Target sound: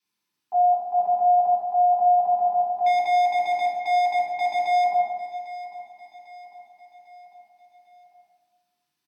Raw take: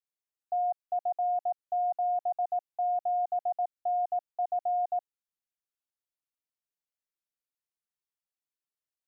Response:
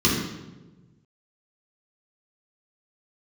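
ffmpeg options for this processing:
-filter_complex "[0:a]highpass=f=480:p=1,asettb=1/sr,asplit=3[a][b][c];[a]atrim=end=2.864[d];[b]atrim=start=2.86:end=4.84,asetpts=PTS-STARTPTS,afade=t=in:d=0.004:c=qsin,afade=t=out:st=1.976:d=0.004:c=qsin,asoftclip=type=hard:threshold=-29.5dB[e];[c]atrim=start=4.836[f];[d][e]acrossfade=d=0.004:c1=hsin:c2=qsin[g];[g][f]acrossfade=d=0.004:c1=qsin:c2=hsin,aecho=1:1:799|1598|2397|3196:0.158|0.0792|0.0396|0.0198[h];[1:a]atrim=start_sample=2205,asetrate=37926,aresample=44100[i];[h][i]afir=irnorm=-1:irlink=0"

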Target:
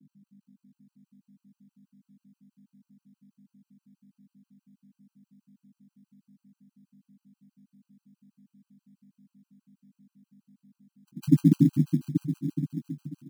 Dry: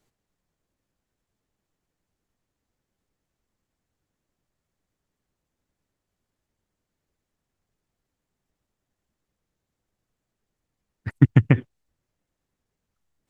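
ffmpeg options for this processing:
-filter_complex "[0:a]aeval=exprs='val(0)+0.00316*(sin(2*PI*50*n/s)+sin(2*PI*2*50*n/s)/2+sin(2*PI*3*50*n/s)/3+sin(2*PI*4*50*n/s)/4+sin(2*PI*5*50*n/s)/5)':c=same,asuperpass=centerf=220:order=20:qfactor=1.2,asplit=2[a][b];[b]aecho=0:1:90|216|392.4|639.4|985.1:0.631|0.398|0.251|0.158|0.1[c];[a][c]amix=inputs=2:normalize=0,acrusher=bits=8:mode=log:mix=0:aa=0.000001,asplit=2[d][e];[e]aecho=0:1:417|834|1251|1668|2085|2502|2919:0.398|0.231|0.134|0.0777|0.0451|0.0261|0.0152[f];[d][f]amix=inputs=2:normalize=0,afftfilt=real='re*gt(sin(2*PI*6.2*pts/sr)*(1-2*mod(floor(b*sr/1024/800),2)),0)':imag='im*gt(sin(2*PI*6.2*pts/sr)*(1-2*mod(floor(b*sr/1024/800),2)),0)':win_size=1024:overlap=0.75,volume=4.5dB"

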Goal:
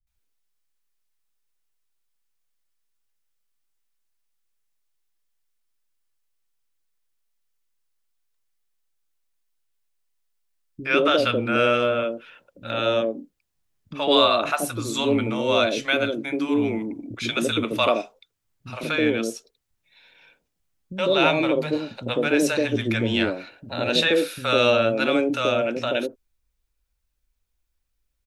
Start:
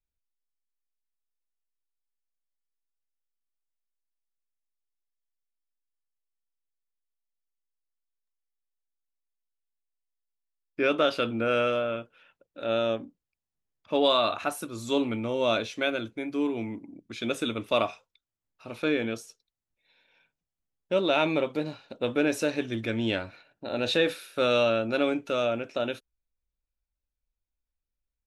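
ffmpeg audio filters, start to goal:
-filter_complex "[0:a]asplit=2[a][b];[b]acompressor=threshold=-35dB:ratio=6,volume=1dB[c];[a][c]amix=inputs=2:normalize=0,acrossover=split=200|640[d][e][f];[f]adelay=70[g];[e]adelay=150[h];[d][h][g]amix=inputs=3:normalize=0,volume=5dB"

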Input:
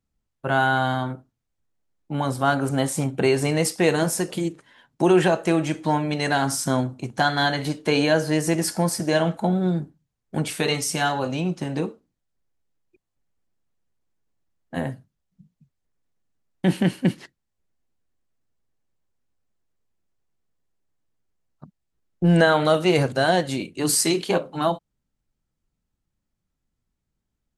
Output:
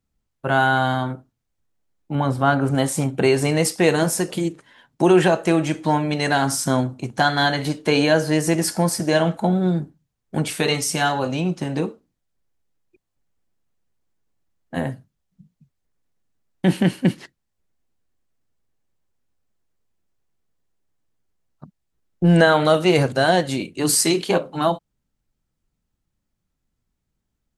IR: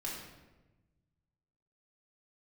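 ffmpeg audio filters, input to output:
-filter_complex "[0:a]asettb=1/sr,asplit=3[a][b][c];[a]atrim=end=2.154[d];[b]atrim=start=2.15:end=2.75,asetpts=PTS-STARTPTS,afade=t=in:d=0.004:c=qsin,afade=t=out:st=0.596:d=0.004:c=qsin,bass=f=250:g=3,treble=f=4k:g=-10[e];[c]atrim=start=2.746[f];[d][e]acrossfade=d=0.004:c1=hsin:c2=qsin[g];[g][f]acrossfade=d=0.004:c1=qsin:c2=hsin,volume=2.5dB"

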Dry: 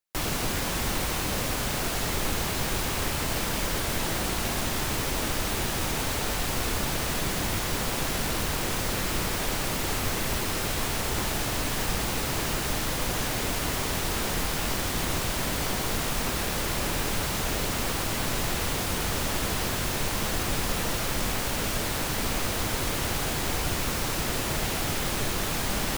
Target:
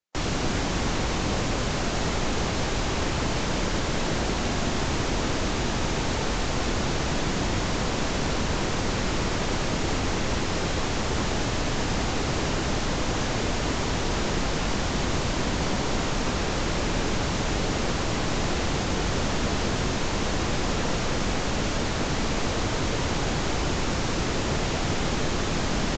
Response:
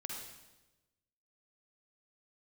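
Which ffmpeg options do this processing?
-filter_complex "[0:a]lowshelf=f=500:g=5,acrossover=split=150|1600[a][b][c];[a]volume=25.5dB,asoftclip=hard,volume=-25.5dB[d];[b]aecho=1:1:200:0.631[e];[d][e][c]amix=inputs=3:normalize=0" -ar 16000 -c:a libvorbis -b:a 96k

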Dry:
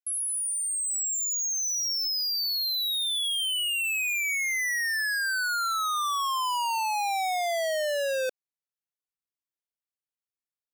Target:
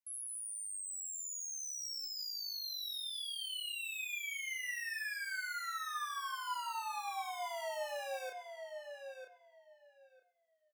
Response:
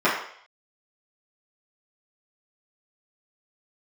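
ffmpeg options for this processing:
-filter_complex "[0:a]alimiter=level_in=14.5dB:limit=-24dB:level=0:latency=1,volume=-14.5dB,highpass=470,asplit=2[a][b];[b]adelay=31,volume=-4dB[c];[a][c]amix=inputs=2:normalize=0,asplit=2[d][e];[e]adelay=950,lowpass=f=2.7k:p=1,volume=-5.5dB,asplit=2[f][g];[g]adelay=950,lowpass=f=2.7k:p=1,volume=0.18,asplit=2[h][i];[i]adelay=950,lowpass=f=2.7k:p=1,volume=0.18[j];[d][f][h][j]amix=inputs=4:normalize=0,asplit=2[k][l];[1:a]atrim=start_sample=2205,highshelf=f=3.8k:g=11[m];[l][m]afir=irnorm=-1:irlink=0,volume=-28dB[n];[k][n]amix=inputs=2:normalize=0,volume=-5dB"

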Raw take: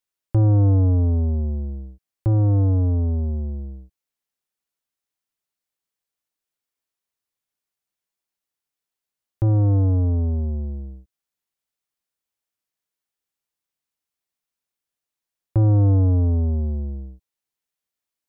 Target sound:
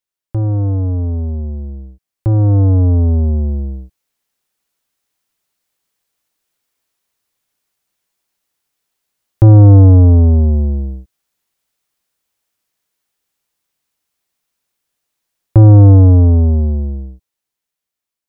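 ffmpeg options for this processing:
-af "dynaudnorm=f=790:g=7:m=15dB"

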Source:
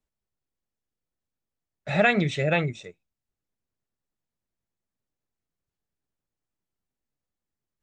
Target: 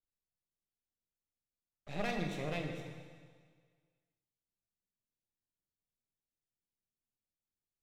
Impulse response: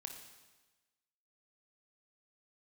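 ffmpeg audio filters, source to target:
-filter_complex "[0:a]equalizer=f=1.4k:t=o:w=1.5:g=-10,aeval=exprs='max(val(0),0)':c=same[a];[1:a]atrim=start_sample=2205,asetrate=30870,aresample=44100[b];[a][b]afir=irnorm=-1:irlink=0,volume=-7dB"

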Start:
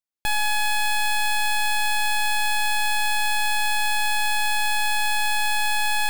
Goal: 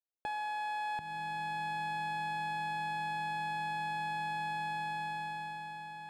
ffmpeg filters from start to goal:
-af "dynaudnorm=f=280:g=9:m=12.5dB,asetnsamples=n=441:p=0,asendcmd='0.99 bandpass f 170',bandpass=f=520:t=q:w=1.3:csg=0,acompressor=threshold=-31dB:ratio=6,volume=-2.5dB"

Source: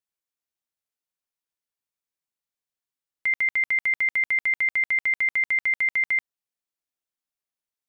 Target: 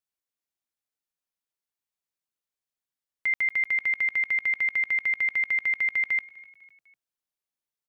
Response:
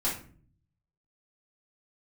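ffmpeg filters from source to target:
-filter_complex "[0:a]asplit=4[a][b][c][d];[b]adelay=250,afreqshift=36,volume=-22.5dB[e];[c]adelay=500,afreqshift=72,volume=-28.3dB[f];[d]adelay=750,afreqshift=108,volume=-34.2dB[g];[a][e][f][g]amix=inputs=4:normalize=0,volume=-2dB"

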